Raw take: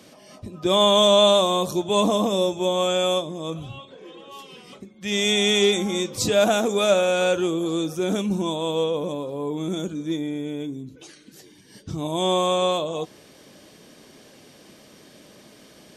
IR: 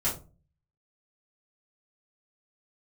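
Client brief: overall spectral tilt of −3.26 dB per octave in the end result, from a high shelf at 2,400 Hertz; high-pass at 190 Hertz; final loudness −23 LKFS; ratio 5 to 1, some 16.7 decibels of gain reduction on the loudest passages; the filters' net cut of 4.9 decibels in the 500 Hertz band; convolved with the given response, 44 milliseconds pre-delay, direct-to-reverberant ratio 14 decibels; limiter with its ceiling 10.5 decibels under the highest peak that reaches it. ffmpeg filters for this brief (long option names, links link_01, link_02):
-filter_complex "[0:a]highpass=190,equalizer=frequency=500:width_type=o:gain=-6.5,highshelf=frequency=2400:gain=5.5,acompressor=threshold=-33dB:ratio=5,alimiter=level_in=6.5dB:limit=-24dB:level=0:latency=1,volume=-6.5dB,asplit=2[link_01][link_02];[1:a]atrim=start_sample=2205,adelay=44[link_03];[link_02][link_03]afir=irnorm=-1:irlink=0,volume=-21.5dB[link_04];[link_01][link_04]amix=inputs=2:normalize=0,volume=17dB"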